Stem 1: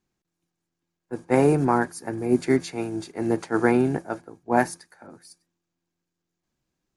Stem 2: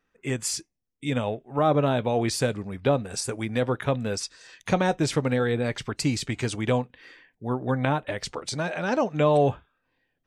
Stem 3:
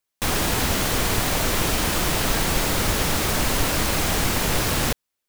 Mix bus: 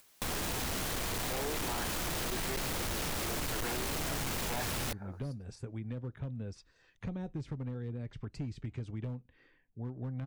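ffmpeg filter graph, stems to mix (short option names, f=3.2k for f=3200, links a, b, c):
-filter_complex "[0:a]highpass=490,equalizer=f=8.6k:w=1.4:g=-12,volume=-1dB[a];[1:a]aemphasis=mode=reproduction:type=riaa,acrossover=split=390|3000[b][c][d];[c]acompressor=threshold=-31dB:ratio=3[e];[b][e][d]amix=inputs=3:normalize=0,adelay=2350,volume=-15dB[f];[2:a]acompressor=mode=upward:threshold=-45dB:ratio=2.5,volume=-1.5dB[g];[a][f][g]amix=inputs=3:normalize=0,volume=26dB,asoftclip=hard,volume=-26dB,acompressor=threshold=-38dB:ratio=2.5"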